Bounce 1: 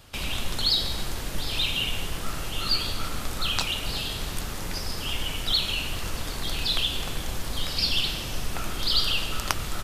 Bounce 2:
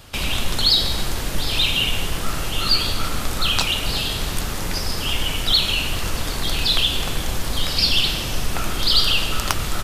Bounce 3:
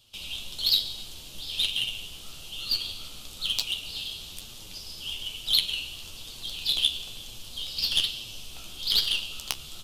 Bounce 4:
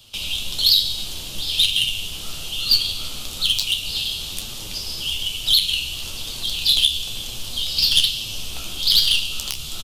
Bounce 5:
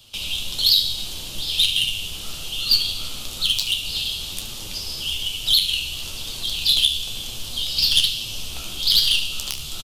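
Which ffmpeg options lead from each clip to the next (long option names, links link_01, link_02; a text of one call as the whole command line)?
ffmpeg -i in.wav -af "acontrast=87" out.wav
ffmpeg -i in.wav -af "highshelf=frequency=2400:width_type=q:width=3:gain=8.5,aeval=exprs='2.66*(cos(1*acos(clip(val(0)/2.66,-1,1)))-cos(1*PI/2))+0.668*(cos(3*acos(clip(val(0)/2.66,-1,1)))-cos(3*PI/2))':channel_layout=same,flanger=delay=8.3:depth=6.5:regen=38:speed=1.1:shape=sinusoidal,volume=-7.5dB" out.wav
ffmpeg -i in.wav -filter_complex "[0:a]asplit=2[link_01][link_02];[link_02]adelay=30,volume=-13.5dB[link_03];[link_01][link_03]amix=inputs=2:normalize=0,acrossover=split=180|3000[link_04][link_05][link_06];[link_05]acompressor=threshold=-47dB:ratio=2[link_07];[link_04][link_07][link_06]amix=inputs=3:normalize=0,alimiter=level_in=13dB:limit=-1dB:release=50:level=0:latency=1,volume=-1.5dB" out.wav
ffmpeg -i in.wav -af "aecho=1:1:72:0.224,volume=-1dB" out.wav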